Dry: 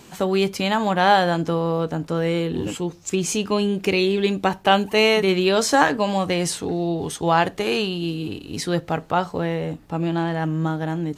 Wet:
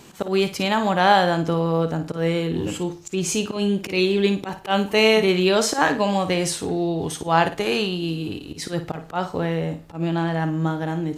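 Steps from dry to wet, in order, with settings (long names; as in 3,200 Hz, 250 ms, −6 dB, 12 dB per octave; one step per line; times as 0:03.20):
volume swells 112 ms
on a send: flutter between parallel walls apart 9.4 metres, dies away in 0.31 s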